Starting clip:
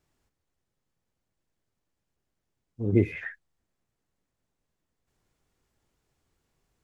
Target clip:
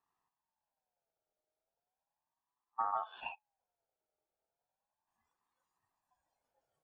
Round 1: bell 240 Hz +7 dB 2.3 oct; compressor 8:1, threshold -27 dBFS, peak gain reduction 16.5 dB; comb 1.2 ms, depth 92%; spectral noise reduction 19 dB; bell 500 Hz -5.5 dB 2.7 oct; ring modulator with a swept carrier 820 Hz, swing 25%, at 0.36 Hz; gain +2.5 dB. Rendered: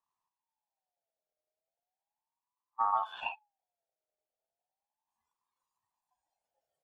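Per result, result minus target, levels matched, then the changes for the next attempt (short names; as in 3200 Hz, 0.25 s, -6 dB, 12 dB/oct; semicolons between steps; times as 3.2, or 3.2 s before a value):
compressor: peak gain reduction -10 dB; 500 Hz band -5.0 dB
change: compressor 8:1, threshold -38.5 dBFS, peak gain reduction 26.5 dB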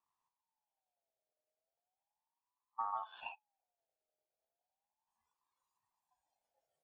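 500 Hz band -5.0 dB
change: second bell 500 Hz +5 dB 2.7 oct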